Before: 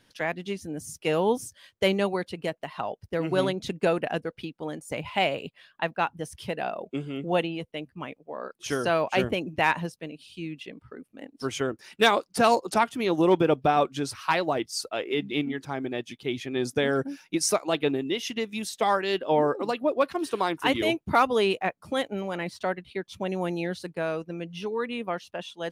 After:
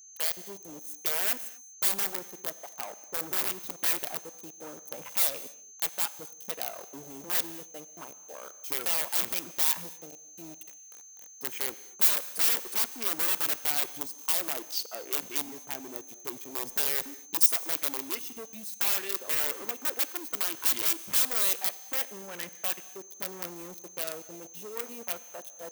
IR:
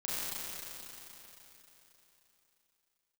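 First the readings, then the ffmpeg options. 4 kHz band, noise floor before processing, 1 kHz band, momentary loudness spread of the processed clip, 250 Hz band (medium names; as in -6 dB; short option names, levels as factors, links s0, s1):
-2.5 dB, -68 dBFS, -14.0 dB, 19 LU, -17.0 dB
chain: -filter_complex "[0:a]acrusher=bits=5:mix=0:aa=0.000001,afwtdn=0.0224,adynamicequalizer=threshold=0.0141:dfrequency=660:dqfactor=1.6:tfrequency=660:tqfactor=1.6:attack=5:release=100:ratio=0.375:range=3:mode=cutabove:tftype=bell,aeval=exprs='(mod(10.6*val(0)+1,2)-1)/10.6':c=same,aeval=exprs='val(0)+0.00158*sin(2*PI*6300*n/s)':c=same,asoftclip=type=tanh:threshold=0.0299,aemphasis=mode=production:type=riaa,asplit=2[s0][s1];[1:a]atrim=start_sample=2205,afade=t=out:st=0.31:d=0.01,atrim=end_sample=14112[s2];[s1][s2]afir=irnorm=-1:irlink=0,volume=0.133[s3];[s0][s3]amix=inputs=2:normalize=0,volume=0.596"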